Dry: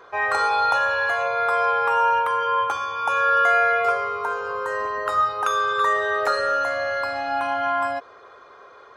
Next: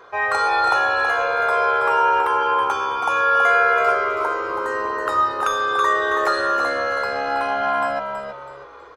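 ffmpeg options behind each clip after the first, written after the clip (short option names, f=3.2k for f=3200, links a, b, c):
-filter_complex "[0:a]asplit=5[a][b][c][d][e];[b]adelay=325,afreqshift=-70,volume=-7dB[f];[c]adelay=650,afreqshift=-140,volume=-16.4dB[g];[d]adelay=975,afreqshift=-210,volume=-25.7dB[h];[e]adelay=1300,afreqshift=-280,volume=-35.1dB[i];[a][f][g][h][i]amix=inputs=5:normalize=0,volume=1.5dB"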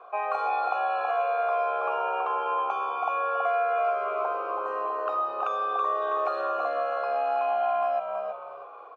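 -filter_complex "[0:a]asplit=3[a][b][c];[a]bandpass=f=730:t=q:w=8,volume=0dB[d];[b]bandpass=f=1.09k:t=q:w=8,volume=-6dB[e];[c]bandpass=f=2.44k:t=q:w=8,volume=-9dB[f];[d][e][f]amix=inputs=3:normalize=0,acrossover=split=810|1800[g][h][i];[g]acompressor=threshold=-35dB:ratio=4[j];[h]acompressor=threshold=-41dB:ratio=4[k];[i]acompressor=threshold=-45dB:ratio=4[l];[j][k][l]amix=inputs=3:normalize=0,aemphasis=mode=reproduction:type=cd,volume=7dB"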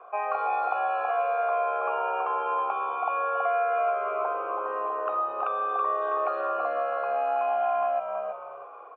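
-af "lowpass=f=2.8k:w=0.5412,lowpass=f=2.8k:w=1.3066"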